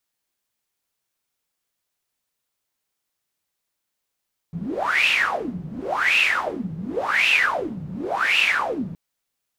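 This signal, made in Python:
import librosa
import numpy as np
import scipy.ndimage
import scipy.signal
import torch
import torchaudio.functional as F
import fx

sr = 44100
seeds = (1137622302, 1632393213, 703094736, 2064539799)

y = fx.wind(sr, seeds[0], length_s=4.42, low_hz=160.0, high_hz=2700.0, q=12.0, gusts=4, swing_db=13.5)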